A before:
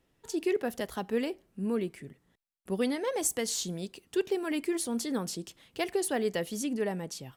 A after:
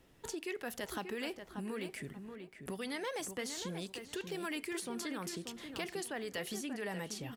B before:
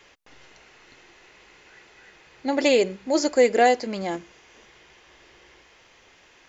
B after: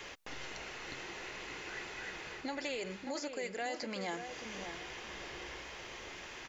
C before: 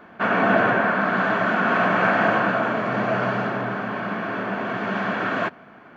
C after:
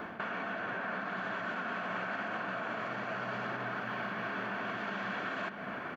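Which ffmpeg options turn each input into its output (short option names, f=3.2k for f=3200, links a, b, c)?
-filter_complex "[0:a]areverse,acompressor=threshold=-28dB:ratio=6,areverse,alimiter=level_in=6dB:limit=-24dB:level=0:latency=1:release=211,volume=-6dB,acrossover=split=1000|2700[a][b][c];[a]acompressor=threshold=-49dB:ratio=4[d];[b]acompressor=threshold=-46dB:ratio=4[e];[c]acompressor=threshold=-52dB:ratio=4[f];[d][e][f]amix=inputs=3:normalize=0,asplit=2[g][h];[h]adelay=586,lowpass=f=2.1k:p=1,volume=-7dB,asplit=2[i][j];[j]adelay=586,lowpass=f=2.1k:p=1,volume=0.27,asplit=2[k][l];[l]adelay=586,lowpass=f=2.1k:p=1,volume=0.27[m];[g][i][k][m]amix=inputs=4:normalize=0,volume=7dB"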